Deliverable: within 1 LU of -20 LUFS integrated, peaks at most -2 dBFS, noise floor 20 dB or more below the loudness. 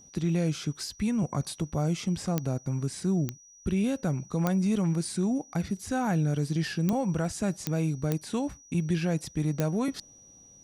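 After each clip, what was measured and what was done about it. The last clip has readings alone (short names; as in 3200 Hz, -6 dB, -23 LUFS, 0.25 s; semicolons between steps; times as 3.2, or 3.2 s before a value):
clicks 7; steady tone 5800 Hz; tone level -52 dBFS; loudness -29.5 LUFS; peak -11.0 dBFS; loudness target -20.0 LUFS
-> de-click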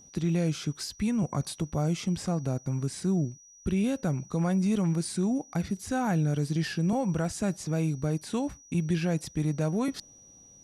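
clicks 0; steady tone 5800 Hz; tone level -52 dBFS
-> notch 5800 Hz, Q 30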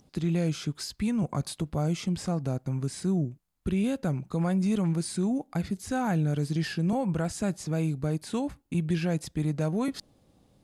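steady tone none; loudness -29.5 LUFS; peak -17.0 dBFS; loudness target -20.0 LUFS
-> gain +9.5 dB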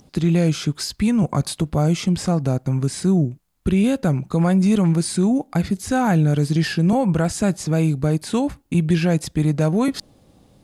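loudness -20.0 LUFS; peak -7.5 dBFS; noise floor -55 dBFS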